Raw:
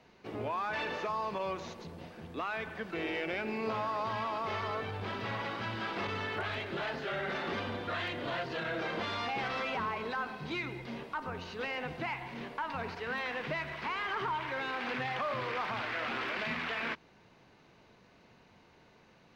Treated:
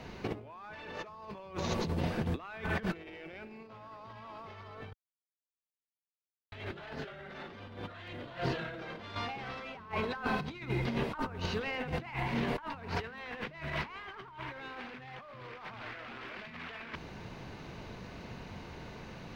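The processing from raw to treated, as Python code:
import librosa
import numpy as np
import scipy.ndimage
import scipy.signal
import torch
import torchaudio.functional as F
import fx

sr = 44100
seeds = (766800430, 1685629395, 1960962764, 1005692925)

y = fx.tremolo_shape(x, sr, shape='saw_up', hz=1.3, depth_pct=50, at=(8.38, 12.45))
y = fx.edit(y, sr, fx.silence(start_s=4.93, length_s=1.59), tone=tone)
y = fx.low_shelf(y, sr, hz=140.0, db=11.0)
y = fx.over_compress(y, sr, threshold_db=-43.0, ratio=-0.5)
y = y * librosa.db_to_amplitude(5.0)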